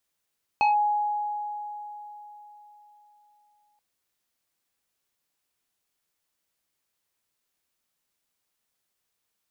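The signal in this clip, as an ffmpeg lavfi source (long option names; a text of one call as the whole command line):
ffmpeg -f lavfi -i "aevalsrc='0.141*pow(10,-3*t/3.9)*sin(2*PI*834*t+0.85*clip(1-t/0.14,0,1)*sin(2*PI*2.06*834*t))':duration=3.18:sample_rate=44100" out.wav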